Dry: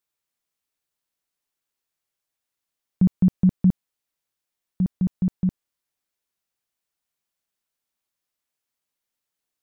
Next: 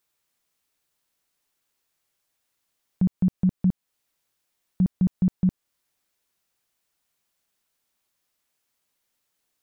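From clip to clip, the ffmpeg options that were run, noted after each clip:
ffmpeg -i in.wav -af "alimiter=limit=-22.5dB:level=0:latency=1:release=263,volume=7.5dB" out.wav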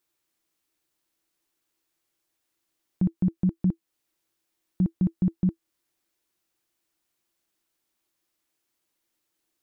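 ffmpeg -i in.wav -af "equalizer=frequency=330:width_type=o:width=0.23:gain=14.5,volume=-2.5dB" out.wav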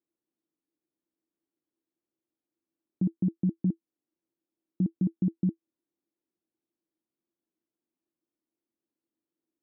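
ffmpeg -i in.wav -af "bandpass=frequency=270:width_type=q:width=1.8:csg=0,volume=1.5dB" out.wav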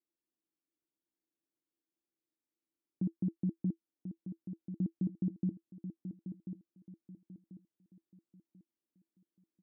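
ffmpeg -i in.wav -af "aecho=1:1:1039|2078|3117|4156:0.335|0.114|0.0387|0.0132,volume=-7dB" out.wav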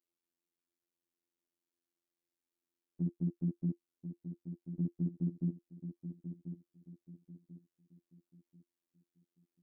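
ffmpeg -i in.wav -af "afftfilt=real='hypot(re,im)*cos(PI*b)':imag='0':win_size=2048:overlap=0.75,volume=2dB" out.wav

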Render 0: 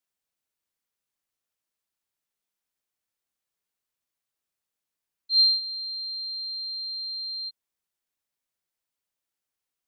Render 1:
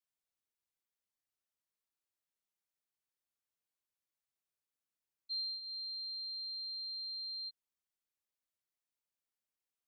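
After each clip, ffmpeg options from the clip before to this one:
ffmpeg -i in.wav -af "acompressor=threshold=-30dB:ratio=6,volume=-8.5dB" out.wav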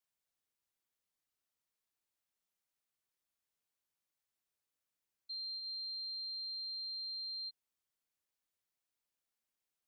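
ffmpeg -i in.wav -af "alimiter=level_in=17.5dB:limit=-24dB:level=0:latency=1,volume=-17.5dB,volume=2dB" out.wav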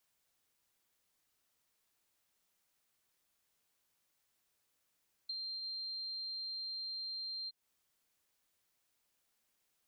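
ffmpeg -i in.wav -af "acompressor=threshold=-52dB:ratio=6,volume=10dB" out.wav

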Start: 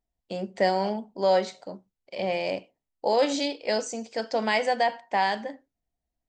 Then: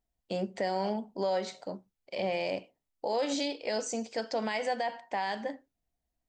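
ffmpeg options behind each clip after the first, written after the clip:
ffmpeg -i in.wav -af "alimiter=limit=-22dB:level=0:latency=1:release=154" out.wav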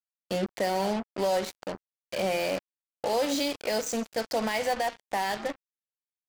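ffmpeg -i in.wav -af "acrusher=bits=5:mix=0:aa=0.5,volume=3.5dB" out.wav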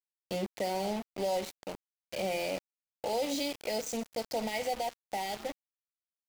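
ffmpeg -i in.wav -af "afftfilt=real='re*(1-between(b*sr/4096,950,1900))':imag='im*(1-between(b*sr/4096,950,1900))':win_size=4096:overlap=0.75,aeval=exprs='val(0)*gte(abs(val(0)),0.0178)':channel_layout=same,volume=-5dB" out.wav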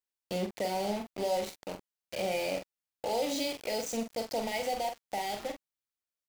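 ffmpeg -i in.wav -filter_complex "[0:a]asplit=2[link_01][link_02];[link_02]adelay=44,volume=-7dB[link_03];[link_01][link_03]amix=inputs=2:normalize=0" out.wav

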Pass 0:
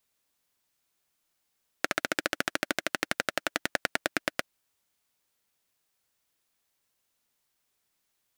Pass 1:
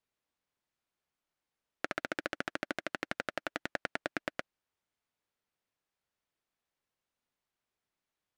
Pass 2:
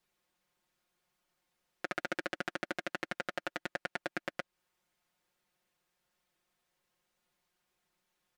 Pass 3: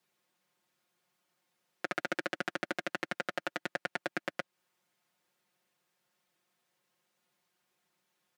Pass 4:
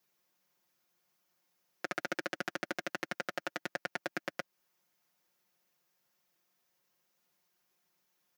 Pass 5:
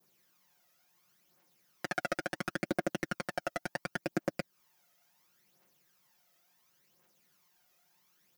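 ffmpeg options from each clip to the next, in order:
ffmpeg -i in.wav -af "aemphasis=mode=reproduction:type=75kf,volume=-5dB" out.wav
ffmpeg -i in.wav -af "alimiter=limit=-23dB:level=0:latency=1:release=223,aecho=1:1:5.6:0.85,volume=5.5dB" out.wav
ffmpeg -i in.wav -af "highpass=frequency=120:width=0.5412,highpass=frequency=120:width=1.3066,volume=2dB" out.wav
ffmpeg -i in.wav -af "aexciter=amount=1.4:drive=5.7:freq=5000,volume=-2dB" out.wav
ffmpeg -i in.wav -filter_complex "[0:a]adynamicequalizer=threshold=0.00316:dfrequency=2000:dqfactor=0.72:tfrequency=2000:tqfactor=0.72:attack=5:release=100:ratio=0.375:range=2.5:mode=cutabove:tftype=bell,asplit=2[link_01][link_02];[link_02]aeval=exprs='0.141*sin(PI/2*3.16*val(0)/0.141)':channel_layout=same,volume=-9.5dB[link_03];[link_01][link_03]amix=inputs=2:normalize=0,aphaser=in_gain=1:out_gain=1:delay=1.6:decay=0.55:speed=0.71:type=triangular,volume=-3dB" out.wav

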